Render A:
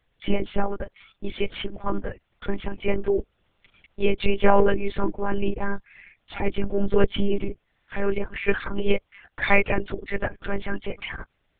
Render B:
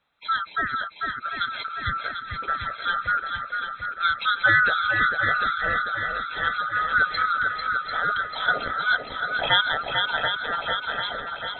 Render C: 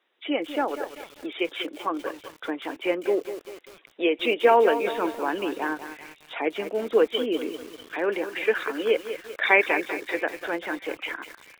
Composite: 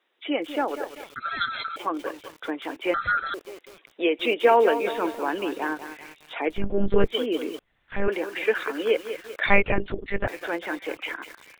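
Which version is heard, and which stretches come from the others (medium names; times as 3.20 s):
C
1.16–1.76 s: from B
2.94–3.34 s: from B
6.56–7.07 s: from A, crossfade 0.16 s
7.59–8.08 s: from A
9.46–10.27 s: from A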